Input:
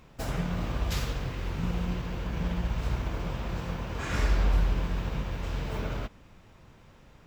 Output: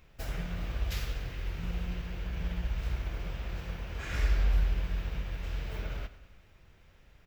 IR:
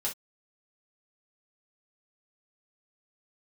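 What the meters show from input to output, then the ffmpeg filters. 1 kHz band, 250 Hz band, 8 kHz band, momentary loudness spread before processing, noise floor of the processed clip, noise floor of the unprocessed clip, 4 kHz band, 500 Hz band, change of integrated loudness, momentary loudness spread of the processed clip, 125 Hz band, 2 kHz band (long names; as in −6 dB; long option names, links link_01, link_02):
−9.0 dB, −9.0 dB, −6.0 dB, 8 LU, −60 dBFS, −55 dBFS, −4.0 dB, −8.0 dB, −3.5 dB, 10 LU, −4.0 dB, −3.5 dB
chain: -af "equalizer=frequency=125:width_type=o:width=1:gain=-7,equalizer=frequency=250:width_type=o:width=1:gain=-10,equalizer=frequency=500:width_type=o:width=1:gain=-4,equalizer=frequency=1000:width_type=o:width=1:gain=-10,equalizer=frequency=4000:width_type=o:width=1:gain=-3,equalizer=frequency=8000:width_type=o:width=1:gain=-7,aecho=1:1:96|192|288|384|480|576:0.158|0.0951|0.0571|0.0342|0.0205|0.0123"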